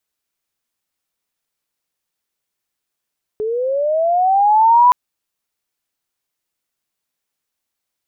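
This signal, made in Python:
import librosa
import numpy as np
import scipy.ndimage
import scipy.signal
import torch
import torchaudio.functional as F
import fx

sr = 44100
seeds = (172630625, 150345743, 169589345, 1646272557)

y = fx.chirp(sr, length_s=1.52, from_hz=420.0, to_hz=1000.0, law='linear', from_db=-18.0, to_db=-6.0)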